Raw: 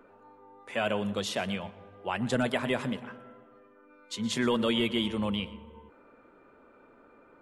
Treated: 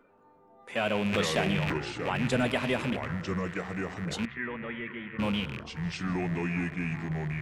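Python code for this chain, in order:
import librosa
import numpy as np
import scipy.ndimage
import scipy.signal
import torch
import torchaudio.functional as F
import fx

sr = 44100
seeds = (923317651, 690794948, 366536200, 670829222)

y = fx.rattle_buzz(x, sr, strikes_db=-44.0, level_db=-26.0)
y = fx.echo_pitch(y, sr, ms=178, semitones=-5, count=3, db_per_echo=-6.0)
y = fx.peak_eq(y, sr, hz=160.0, db=4.5, octaves=0.5)
y = fx.transient(y, sr, attack_db=7, sustain_db=11, at=(0.95, 1.78))
y = fx.ladder_lowpass(y, sr, hz=2000.0, resonance_pct=80, at=(4.25, 5.19))
y = fx.noise_reduce_blind(y, sr, reduce_db=6)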